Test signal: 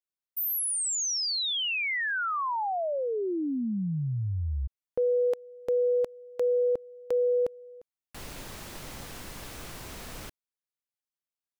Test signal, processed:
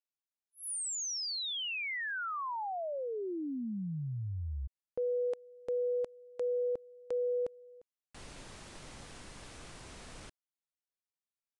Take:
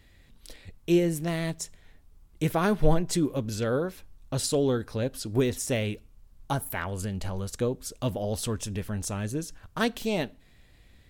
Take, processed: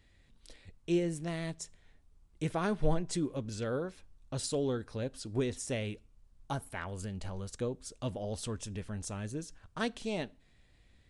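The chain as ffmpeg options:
-af "aresample=22050,aresample=44100,volume=0.422"

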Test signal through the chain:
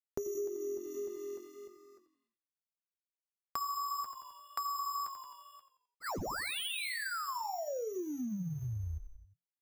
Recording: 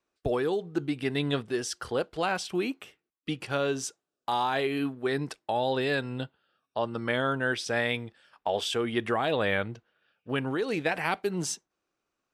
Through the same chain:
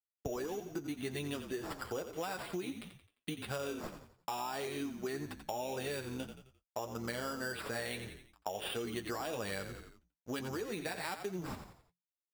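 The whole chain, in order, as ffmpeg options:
-filter_complex "[0:a]aresample=16000,aeval=exprs='sgn(val(0))*max(abs(val(0))-0.002,0)':c=same,aresample=44100,acrusher=samples=7:mix=1:aa=0.000001,flanger=delay=8.9:depth=2.4:regen=-33:speed=1.7:shape=sinusoidal,asplit=5[s0][s1][s2][s3][s4];[s1]adelay=87,afreqshift=-44,volume=0.282[s5];[s2]adelay=174,afreqshift=-88,volume=0.112[s6];[s3]adelay=261,afreqshift=-132,volume=0.0452[s7];[s4]adelay=348,afreqshift=-176,volume=0.018[s8];[s0][s5][s6][s7][s8]amix=inputs=5:normalize=0,acompressor=threshold=0.0126:ratio=5,volume=1.19"

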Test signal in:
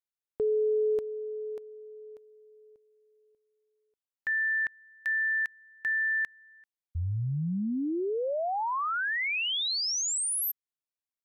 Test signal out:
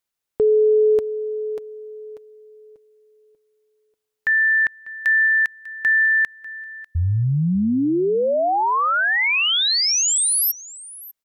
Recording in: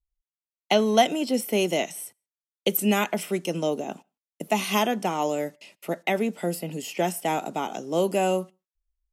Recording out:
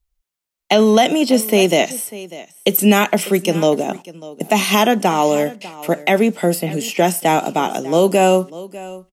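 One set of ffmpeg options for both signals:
-af "aecho=1:1:596:0.112,alimiter=level_in=4.73:limit=0.891:release=50:level=0:latency=1,volume=0.75"

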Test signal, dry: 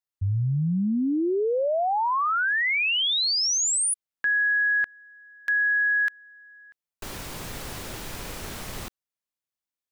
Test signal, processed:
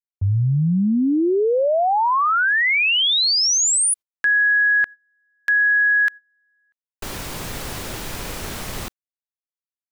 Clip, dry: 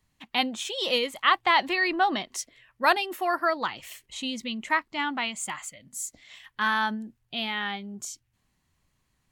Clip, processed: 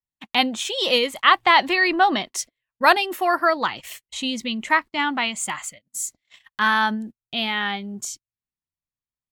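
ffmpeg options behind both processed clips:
-af "agate=range=0.0224:threshold=0.00708:ratio=3:release=70:detection=rms,volume=2"

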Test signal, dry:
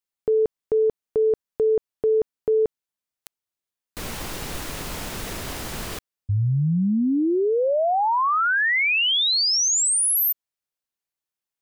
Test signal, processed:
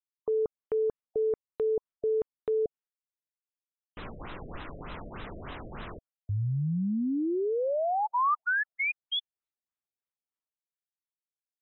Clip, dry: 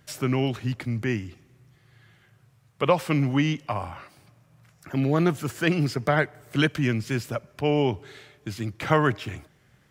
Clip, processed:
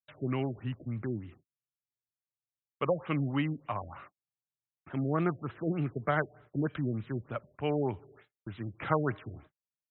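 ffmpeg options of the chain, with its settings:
-af "agate=range=0.00562:threshold=0.00562:ratio=16:release=279:detection=peak,equalizer=f=1200:t=o:w=0.71:g=4.5,afftfilt=real='re*lt(b*sr/1024,670*pow(4100/670,0.5+0.5*sin(2*PI*3.3*pts/sr)))':imag='im*lt(b*sr/1024,670*pow(4100/670,0.5+0.5*sin(2*PI*3.3*pts/sr)))':win_size=1024:overlap=0.75,volume=0.398"

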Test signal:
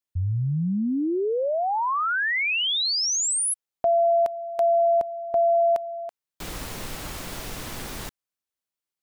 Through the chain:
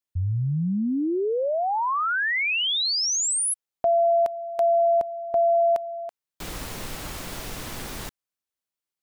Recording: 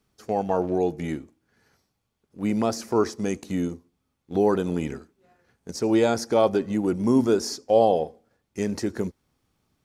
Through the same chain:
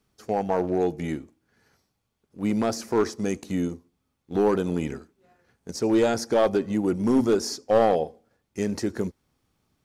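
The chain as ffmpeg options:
-af "aeval=exprs='clip(val(0),-1,0.158)':c=same"

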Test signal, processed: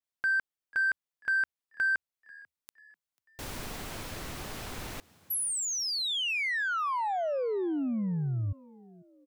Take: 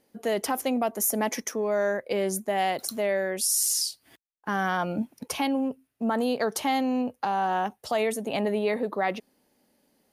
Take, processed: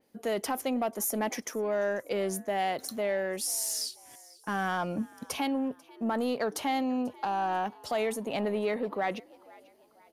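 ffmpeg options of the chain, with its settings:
-filter_complex "[0:a]asplit=2[s0][s1];[s1]asoftclip=type=tanh:threshold=0.0355,volume=0.473[s2];[s0][s2]amix=inputs=2:normalize=0,asplit=4[s3][s4][s5][s6];[s4]adelay=491,afreqshift=75,volume=0.0668[s7];[s5]adelay=982,afreqshift=150,volume=0.0295[s8];[s6]adelay=1473,afreqshift=225,volume=0.0129[s9];[s3][s7][s8][s9]amix=inputs=4:normalize=0,adynamicequalizer=threshold=0.00891:dfrequency=4700:dqfactor=0.7:tfrequency=4700:tqfactor=0.7:attack=5:release=100:ratio=0.375:range=2:mode=cutabove:tftype=highshelf,volume=0.531"

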